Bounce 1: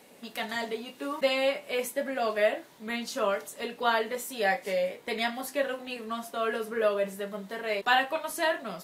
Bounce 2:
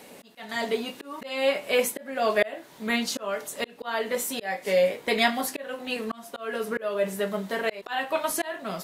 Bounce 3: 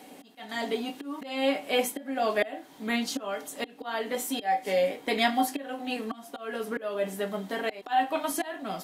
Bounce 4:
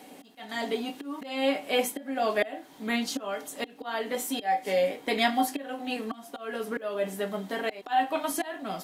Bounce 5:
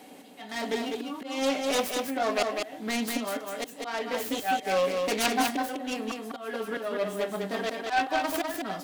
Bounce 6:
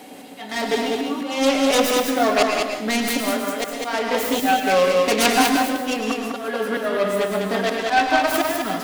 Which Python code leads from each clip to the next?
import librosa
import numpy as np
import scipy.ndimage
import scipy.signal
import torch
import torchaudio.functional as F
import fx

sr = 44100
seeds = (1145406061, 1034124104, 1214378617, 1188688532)

y1 = fx.auto_swell(x, sr, attack_ms=389.0)
y1 = y1 * librosa.db_to_amplitude(7.5)
y2 = fx.peak_eq(y1, sr, hz=78.0, db=-5.5, octaves=1.1)
y2 = fx.small_body(y2, sr, hz=(280.0, 760.0, 3200.0), ring_ms=85, db=13)
y2 = y2 * librosa.db_to_amplitude(-4.0)
y3 = fx.dmg_crackle(y2, sr, seeds[0], per_s=160.0, level_db=-58.0)
y4 = fx.self_delay(y3, sr, depth_ms=0.39)
y4 = y4 + 10.0 ** (-4.0 / 20.0) * np.pad(y4, (int(201 * sr / 1000.0), 0))[:len(y4)]
y5 = fx.rev_plate(y4, sr, seeds[1], rt60_s=0.7, hf_ratio=0.95, predelay_ms=95, drr_db=4.0)
y5 = y5 * librosa.db_to_amplitude(8.0)